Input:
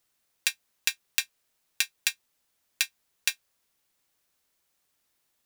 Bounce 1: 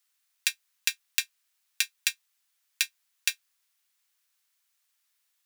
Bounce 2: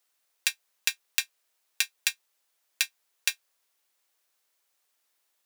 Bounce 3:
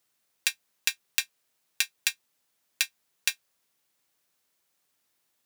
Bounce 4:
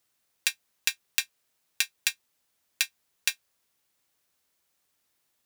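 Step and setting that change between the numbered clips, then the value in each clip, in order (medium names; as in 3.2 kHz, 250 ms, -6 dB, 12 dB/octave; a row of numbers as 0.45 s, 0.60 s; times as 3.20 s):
high-pass, cutoff frequency: 1.3 kHz, 440 Hz, 100 Hz, 40 Hz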